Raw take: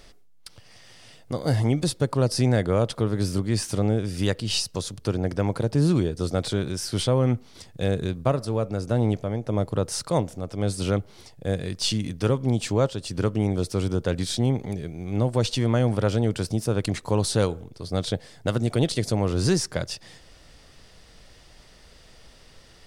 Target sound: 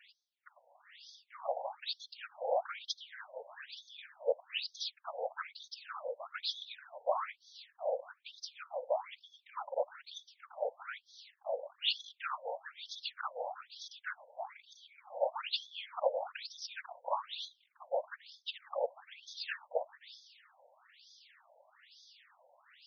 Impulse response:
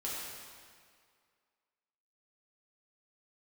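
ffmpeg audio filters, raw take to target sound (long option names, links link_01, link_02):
-af "afftfilt=real='hypot(re,im)*cos(2*PI*random(0))':imag='hypot(re,im)*sin(2*PI*random(1))':win_size=512:overlap=0.75,afftfilt=real='re*between(b*sr/1024,660*pow(4700/660,0.5+0.5*sin(2*PI*1.1*pts/sr))/1.41,660*pow(4700/660,0.5+0.5*sin(2*PI*1.1*pts/sr))*1.41)':imag='im*between(b*sr/1024,660*pow(4700/660,0.5+0.5*sin(2*PI*1.1*pts/sr))/1.41,660*pow(4700/660,0.5+0.5*sin(2*PI*1.1*pts/sr))*1.41)':win_size=1024:overlap=0.75,volume=5dB"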